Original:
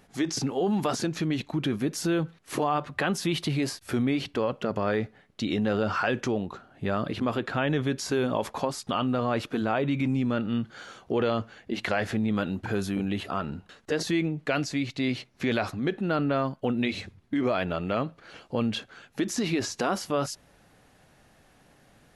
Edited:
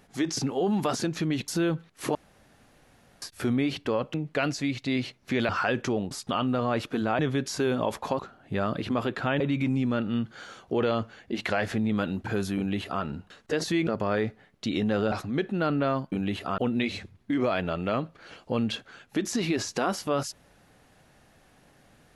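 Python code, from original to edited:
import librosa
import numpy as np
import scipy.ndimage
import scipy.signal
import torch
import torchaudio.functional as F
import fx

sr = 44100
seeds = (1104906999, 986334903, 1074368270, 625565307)

y = fx.edit(x, sr, fx.cut(start_s=1.48, length_s=0.49),
    fx.room_tone_fill(start_s=2.64, length_s=1.07),
    fx.swap(start_s=4.63, length_s=1.25, other_s=14.26, other_length_s=1.35),
    fx.swap(start_s=6.5, length_s=1.21, other_s=8.71, other_length_s=1.08),
    fx.duplicate(start_s=12.96, length_s=0.46, to_s=16.61), tone=tone)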